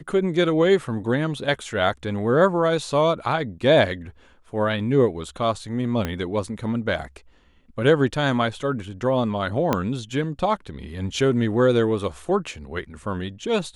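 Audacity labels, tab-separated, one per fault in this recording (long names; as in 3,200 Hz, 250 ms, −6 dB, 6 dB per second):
6.050000	6.050000	click −11 dBFS
9.730000	9.730000	click −7 dBFS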